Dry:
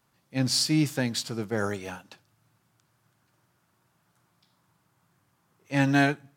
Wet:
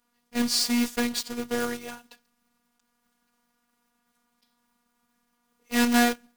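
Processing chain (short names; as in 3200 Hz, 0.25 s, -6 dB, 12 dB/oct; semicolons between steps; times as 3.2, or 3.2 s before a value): block floating point 3-bit; in parallel at -5 dB: crossover distortion -35 dBFS; on the sum: robotiser 240 Hz; gain -1 dB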